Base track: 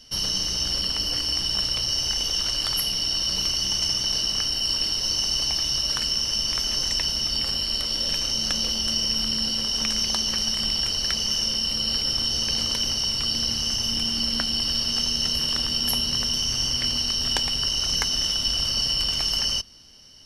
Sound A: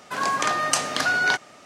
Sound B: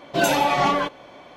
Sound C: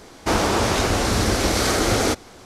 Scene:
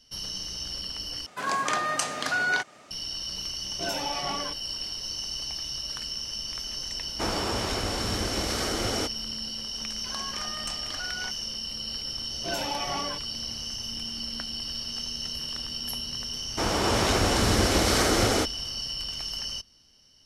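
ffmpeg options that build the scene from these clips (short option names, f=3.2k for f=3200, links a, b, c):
-filter_complex "[1:a]asplit=2[a][b];[2:a]asplit=2[c][d];[3:a]asplit=2[e][f];[0:a]volume=-9.5dB[g];[a]alimiter=limit=-8.5dB:level=0:latency=1:release=212[h];[b]volume=9dB,asoftclip=hard,volume=-9dB[i];[f]dynaudnorm=f=110:g=9:m=11.5dB[j];[g]asplit=2[k][l];[k]atrim=end=1.264[m];[h]atrim=end=1.65,asetpts=PTS-STARTPTS,volume=-3.5dB[n];[l]atrim=start=2.906[o];[c]atrim=end=1.36,asetpts=PTS-STARTPTS,volume=-13.5dB,afade=t=in:d=0.004:c=hsin,afade=t=out:st=1.356:d=0.004:c=hsin,adelay=160965S[p];[e]atrim=end=2.45,asetpts=PTS-STARTPTS,volume=-10dB,afade=t=in:d=0.004:c=hsin,afade=t=out:st=2.446:d=0.004:c=hsin,adelay=6930[q];[i]atrim=end=1.65,asetpts=PTS-STARTPTS,volume=-16dB,afade=t=in:d=0.004:c=hsin,afade=t=out:st=1.646:d=0.004:c=hsin,adelay=438354S[r];[d]atrim=end=1.36,asetpts=PTS-STARTPTS,volume=-13dB,afade=t=in:d=0.004:c=hsin,afade=t=out:st=1.356:d=0.004:c=hsin,adelay=12300[s];[j]atrim=end=2.45,asetpts=PTS-STARTPTS,volume=-9.5dB,afade=t=in:d=0.004:c=hsin,afade=t=out:st=2.446:d=0.004:c=hsin,adelay=16310[t];[m][n]acrossfade=d=0.004:c1=hsin:c2=hsin[u];[u][o]acrossfade=d=0.004:c1=hsin:c2=hsin[v];[v][p][q][r][s][t]amix=inputs=6:normalize=0"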